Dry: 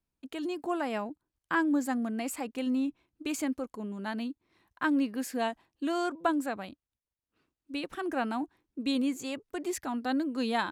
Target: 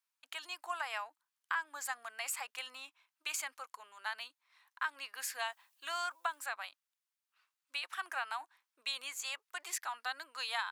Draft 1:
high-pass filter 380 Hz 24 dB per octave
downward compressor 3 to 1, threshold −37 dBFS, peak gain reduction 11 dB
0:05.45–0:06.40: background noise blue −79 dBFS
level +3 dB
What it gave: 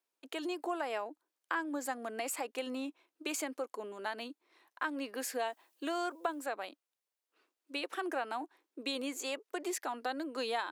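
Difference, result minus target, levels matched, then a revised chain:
500 Hz band +12.5 dB
high-pass filter 990 Hz 24 dB per octave
downward compressor 3 to 1, threshold −37 dBFS, peak gain reduction 9 dB
0:05.45–0:06.40: background noise blue −79 dBFS
level +3 dB

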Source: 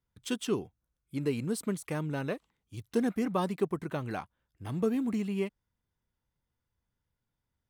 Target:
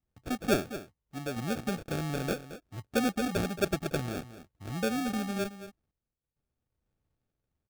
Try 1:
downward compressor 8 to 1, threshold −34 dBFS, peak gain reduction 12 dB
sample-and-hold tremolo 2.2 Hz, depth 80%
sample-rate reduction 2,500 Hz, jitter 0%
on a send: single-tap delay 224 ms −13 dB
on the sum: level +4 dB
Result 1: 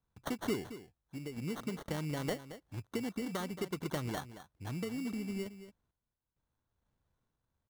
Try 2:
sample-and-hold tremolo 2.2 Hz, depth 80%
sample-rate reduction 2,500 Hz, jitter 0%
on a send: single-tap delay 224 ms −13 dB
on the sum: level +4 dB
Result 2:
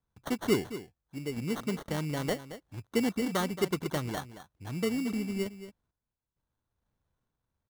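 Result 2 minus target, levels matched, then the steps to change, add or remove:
sample-rate reduction: distortion −9 dB
change: sample-rate reduction 1,000 Hz, jitter 0%

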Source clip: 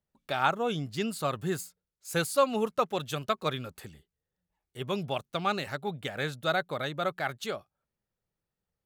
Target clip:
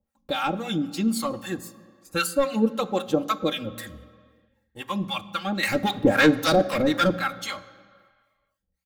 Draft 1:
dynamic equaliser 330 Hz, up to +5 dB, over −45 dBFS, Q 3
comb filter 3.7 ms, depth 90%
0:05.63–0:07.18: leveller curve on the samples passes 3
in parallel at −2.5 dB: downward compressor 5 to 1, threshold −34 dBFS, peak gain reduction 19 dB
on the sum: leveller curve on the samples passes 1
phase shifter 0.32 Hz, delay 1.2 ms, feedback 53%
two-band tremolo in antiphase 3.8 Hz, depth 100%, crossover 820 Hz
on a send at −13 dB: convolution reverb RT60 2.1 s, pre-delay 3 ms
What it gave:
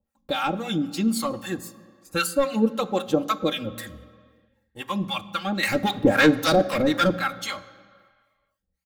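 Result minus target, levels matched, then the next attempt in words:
downward compressor: peak gain reduction −5 dB
dynamic equaliser 330 Hz, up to +5 dB, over −45 dBFS, Q 3
comb filter 3.7 ms, depth 90%
0:05.63–0:07.18: leveller curve on the samples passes 3
in parallel at −2.5 dB: downward compressor 5 to 1, threshold −40.5 dBFS, peak gain reduction 24 dB
on the sum: leveller curve on the samples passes 1
phase shifter 0.32 Hz, delay 1.2 ms, feedback 53%
two-band tremolo in antiphase 3.8 Hz, depth 100%, crossover 820 Hz
on a send at −13 dB: convolution reverb RT60 2.1 s, pre-delay 3 ms

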